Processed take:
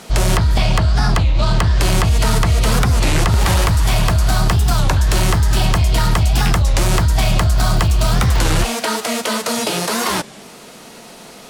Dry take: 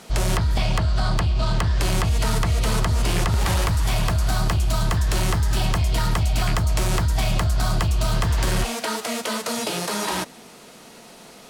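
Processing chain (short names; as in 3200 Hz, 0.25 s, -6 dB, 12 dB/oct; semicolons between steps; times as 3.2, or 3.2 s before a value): 7.54–8.59 crackle 190/s -28 dBFS; record warp 33 1/3 rpm, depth 250 cents; gain +6.5 dB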